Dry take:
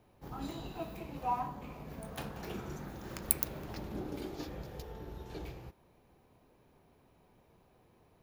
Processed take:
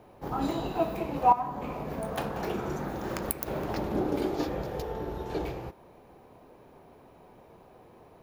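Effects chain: peaking EQ 630 Hz +9 dB 3 oct; 1.32–3.48 s: compression 6:1, threshold -33 dBFS, peak gain reduction 12 dB; trim +5.5 dB

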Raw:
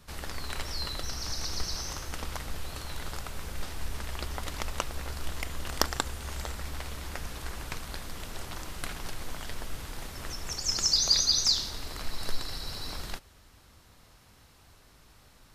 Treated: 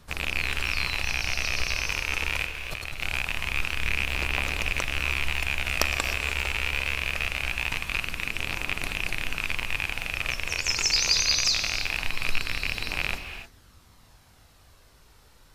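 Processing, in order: rattle on loud lows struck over -41 dBFS, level -13 dBFS; 2.46–3.01 s: compressor with a negative ratio -37 dBFS, ratio -1; phaser 0.23 Hz, delay 2.3 ms, feedback 28%; gated-style reverb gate 330 ms rising, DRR 8.5 dB

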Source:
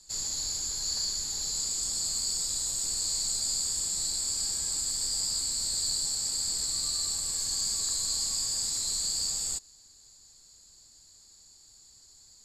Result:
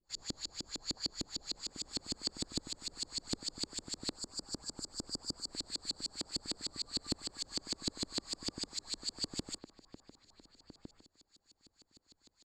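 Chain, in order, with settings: pre-emphasis filter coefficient 0.9; LFO low-pass saw up 6.6 Hz 270–3800 Hz; 4.12–5.53 s: high-order bell 2.6 kHz -15.5 dB 1.2 oct; echo from a far wall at 250 m, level -9 dB; trim +5 dB

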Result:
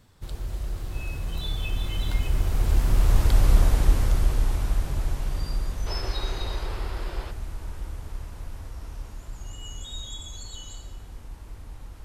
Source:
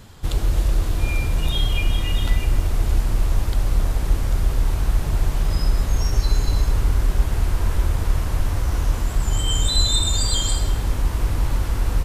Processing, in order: Doppler pass-by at 3.48 s, 25 m/s, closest 15 m; time-frequency box 5.87–7.31 s, 320–5400 Hz +9 dB; trim +2 dB

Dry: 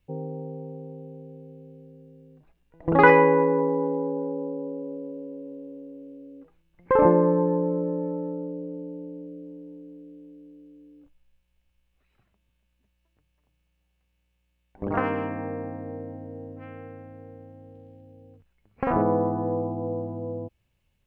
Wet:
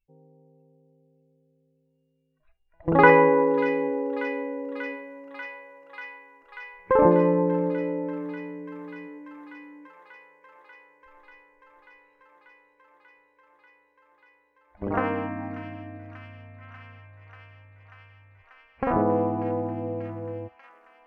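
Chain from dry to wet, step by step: spectral noise reduction 22 dB; feedback echo behind a high-pass 589 ms, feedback 84%, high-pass 3 kHz, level -3.5 dB

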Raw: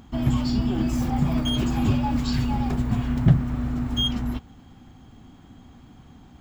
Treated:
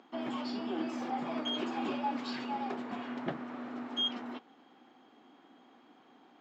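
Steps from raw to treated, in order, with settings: high-pass 320 Hz 24 dB/octave; distance through air 180 m; trim -3 dB

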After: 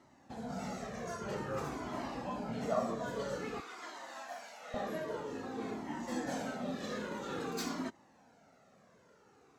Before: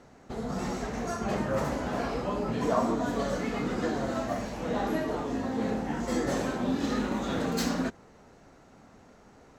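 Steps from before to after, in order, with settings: high-pass 110 Hz 12 dB/octave, from 3.60 s 920 Hz, from 4.74 s 160 Hz; Shepard-style flanger falling 0.51 Hz; trim -3 dB

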